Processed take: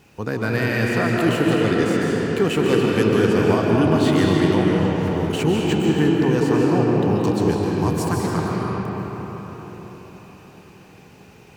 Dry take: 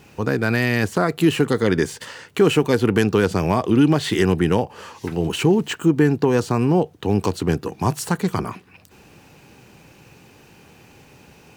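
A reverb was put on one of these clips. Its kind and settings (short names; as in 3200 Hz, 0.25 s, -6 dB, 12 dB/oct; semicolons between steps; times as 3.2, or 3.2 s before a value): digital reverb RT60 5 s, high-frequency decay 0.55×, pre-delay 0.105 s, DRR -3.5 dB; gain -4.5 dB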